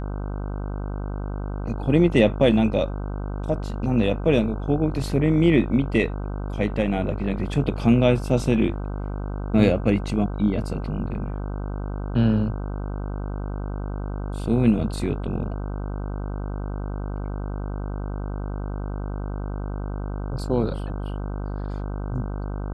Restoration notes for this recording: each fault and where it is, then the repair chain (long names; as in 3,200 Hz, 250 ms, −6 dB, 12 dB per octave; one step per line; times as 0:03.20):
mains buzz 50 Hz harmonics 31 −29 dBFS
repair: hum removal 50 Hz, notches 31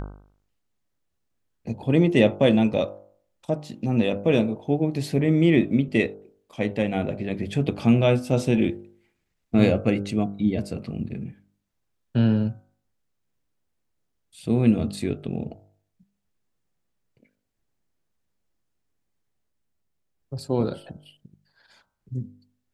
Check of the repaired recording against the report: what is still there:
none of them is left